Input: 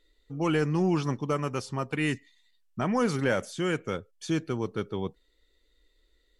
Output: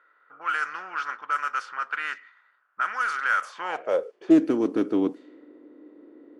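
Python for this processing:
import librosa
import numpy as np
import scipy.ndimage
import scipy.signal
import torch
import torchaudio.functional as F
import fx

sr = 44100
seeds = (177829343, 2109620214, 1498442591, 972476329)

y = fx.bin_compress(x, sr, power=0.6)
y = fx.high_shelf(y, sr, hz=2000.0, db=-6.5)
y = fx.filter_sweep_highpass(y, sr, from_hz=1400.0, to_hz=290.0, start_s=3.36, end_s=4.38, q=7.2)
y = fx.high_shelf(y, sr, hz=4700.0, db=5.0)
y = fx.env_lowpass(y, sr, base_hz=1000.0, full_db=-17.0)
y = fx.doppler_dist(y, sr, depth_ms=0.11)
y = F.gain(torch.from_numpy(y), -4.0).numpy()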